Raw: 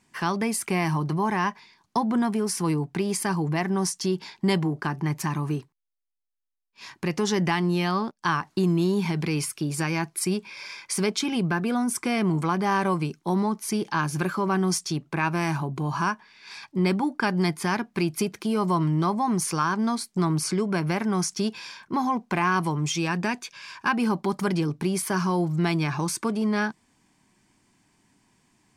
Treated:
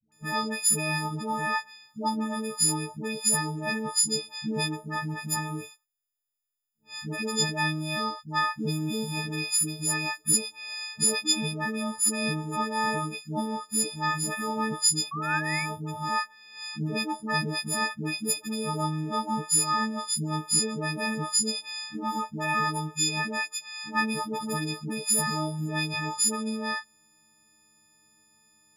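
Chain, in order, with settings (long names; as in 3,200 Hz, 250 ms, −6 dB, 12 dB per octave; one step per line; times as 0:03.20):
every partial snapped to a pitch grid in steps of 6 semitones
all-pass dispersion highs, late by 121 ms, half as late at 490 Hz
sound drawn into the spectrogram rise, 0:15.11–0:15.66, 1,100–2,400 Hz −27 dBFS
level −7 dB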